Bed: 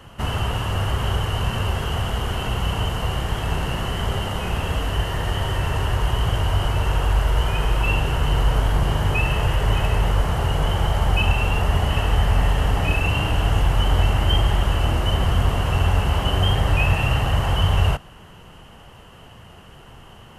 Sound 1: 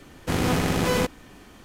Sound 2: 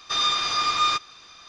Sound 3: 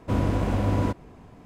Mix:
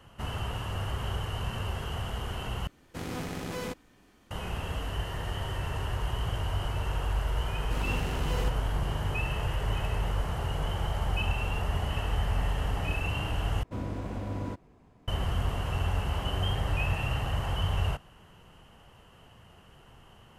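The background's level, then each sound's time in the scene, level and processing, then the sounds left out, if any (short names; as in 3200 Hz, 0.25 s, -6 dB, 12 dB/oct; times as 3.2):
bed -10.5 dB
2.67 replace with 1 -13 dB
7.43 add 1 -14.5 dB
13.63 replace with 3 -11 dB
not used: 2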